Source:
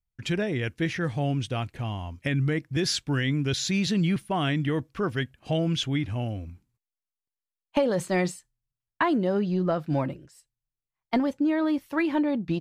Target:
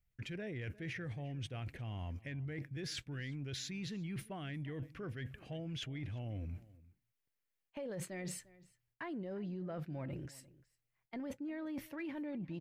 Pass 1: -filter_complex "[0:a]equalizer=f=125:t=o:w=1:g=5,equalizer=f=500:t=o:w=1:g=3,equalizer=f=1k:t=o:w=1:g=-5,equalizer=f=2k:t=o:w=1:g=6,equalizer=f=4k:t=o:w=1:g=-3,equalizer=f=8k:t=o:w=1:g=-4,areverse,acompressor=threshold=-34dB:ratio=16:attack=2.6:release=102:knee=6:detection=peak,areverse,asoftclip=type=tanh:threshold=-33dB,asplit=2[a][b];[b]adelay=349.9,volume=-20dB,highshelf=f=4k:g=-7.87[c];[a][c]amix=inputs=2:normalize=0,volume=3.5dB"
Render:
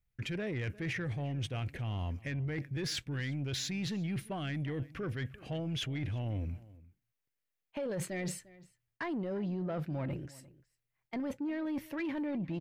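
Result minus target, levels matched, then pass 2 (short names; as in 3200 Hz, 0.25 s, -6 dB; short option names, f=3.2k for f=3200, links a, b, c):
compressor: peak gain reduction -8 dB
-filter_complex "[0:a]equalizer=f=125:t=o:w=1:g=5,equalizer=f=500:t=o:w=1:g=3,equalizer=f=1k:t=o:w=1:g=-5,equalizer=f=2k:t=o:w=1:g=6,equalizer=f=4k:t=o:w=1:g=-3,equalizer=f=8k:t=o:w=1:g=-4,areverse,acompressor=threshold=-42.5dB:ratio=16:attack=2.6:release=102:knee=6:detection=peak,areverse,asoftclip=type=tanh:threshold=-33dB,asplit=2[a][b];[b]adelay=349.9,volume=-20dB,highshelf=f=4k:g=-7.87[c];[a][c]amix=inputs=2:normalize=0,volume=3.5dB"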